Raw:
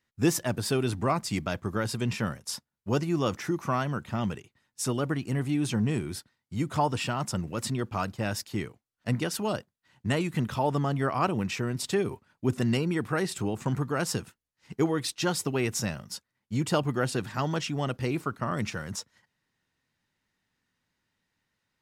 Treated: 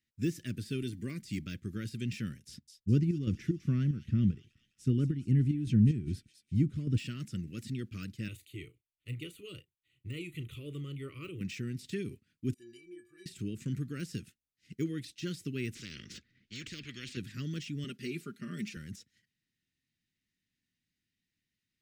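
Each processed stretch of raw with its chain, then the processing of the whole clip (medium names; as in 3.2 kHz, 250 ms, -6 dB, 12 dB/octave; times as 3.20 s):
0.82–1.22 s: treble shelf 11 kHz +10 dB + comb of notches 1.3 kHz
2.47–6.98 s: tilt EQ -3.5 dB/octave + square tremolo 2.5 Hz, depth 60%, duty 60% + feedback echo behind a high-pass 205 ms, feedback 52%, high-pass 3.4 kHz, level -7 dB
8.28–11.41 s: de-esser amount 80% + static phaser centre 1.1 kHz, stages 8 + doubling 34 ms -13.5 dB
12.54–13.26 s: peaking EQ 140 Hz -6 dB 0.55 oct + inharmonic resonator 350 Hz, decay 0.34 s, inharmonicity 0.03
15.75–17.17 s: distance through air 180 m + spectrum-flattening compressor 4:1
17.84–18.77 s: high-pass 190 Hz + comb 5 ms, depth 68%
whole clip: de-esser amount 95%; Chebyshev band-stop 290–2300 Hz, order 2; trim -5.5 dB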